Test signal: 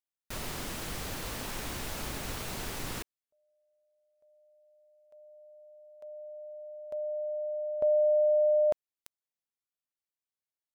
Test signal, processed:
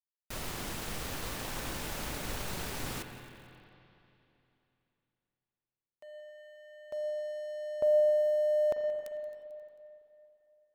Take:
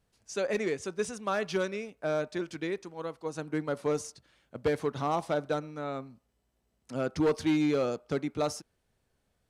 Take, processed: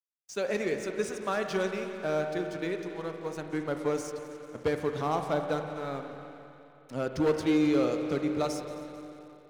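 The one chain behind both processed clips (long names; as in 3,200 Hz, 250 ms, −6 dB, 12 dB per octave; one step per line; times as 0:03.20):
echo machine with several playback heads 89 ms, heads second and third, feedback 65%, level −16.5 dB
dead-zone distortion −51 dBFS
spring reverb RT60 3 s, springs 39/43/56 ms, chirp 40 ms, DRR 6 dB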